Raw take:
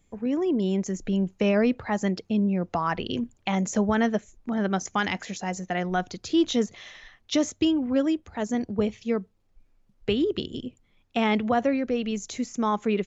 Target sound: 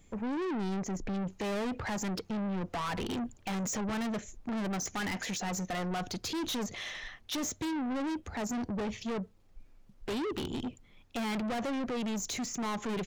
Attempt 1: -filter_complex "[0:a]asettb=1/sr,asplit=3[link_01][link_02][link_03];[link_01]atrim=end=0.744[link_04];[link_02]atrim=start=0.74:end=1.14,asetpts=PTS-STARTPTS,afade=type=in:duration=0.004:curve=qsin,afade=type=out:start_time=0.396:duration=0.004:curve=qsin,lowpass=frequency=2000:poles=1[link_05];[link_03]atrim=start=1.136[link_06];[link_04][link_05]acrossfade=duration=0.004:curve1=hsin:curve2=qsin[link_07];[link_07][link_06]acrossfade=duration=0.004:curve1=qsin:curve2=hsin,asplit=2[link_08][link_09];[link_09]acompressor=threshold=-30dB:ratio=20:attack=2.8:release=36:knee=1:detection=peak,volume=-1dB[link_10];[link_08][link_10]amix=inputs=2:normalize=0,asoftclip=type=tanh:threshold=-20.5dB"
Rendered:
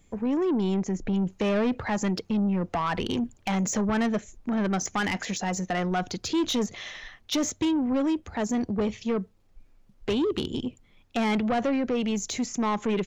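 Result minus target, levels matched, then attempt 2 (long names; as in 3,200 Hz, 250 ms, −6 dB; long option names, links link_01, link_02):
soft clipping: distortion −7 dB
-filter_complex "[0:a]asettb=1/sr,asplit=3[link_01][link_02][link_03];[link_01]atrim=end=0.744[link_04];[link_02]atrim=start=0.74:end=1.14,asetpts=PTS-STARTPTS,afade=type=in:duration=0.004:curve=qsin,afade=type=out:start_time=0.396:duration=0.004:curve=qsin,lowpass=frequency=2000:poles=1[link_05];[link_03]atrim=start=1.136[link_06];[link_04][link_05]acrossfade=duration=0.004:curve1=hsin:curve2=qsin[link_07];[link_07][link_06]acrossfade=duration=0.004:curve1=qsin:curve2=hsin,asplit=2[link_08][link_09];[link_09]acompressor=threshold=-30dB:ratio=20:attack=2.8:release=36:knee=1:detection=peak,volume=-1dB[link_10];[link_08][link_10]amix=inputs=2:normalize=0,asoftclip=type=tanh:threshold=-32dB"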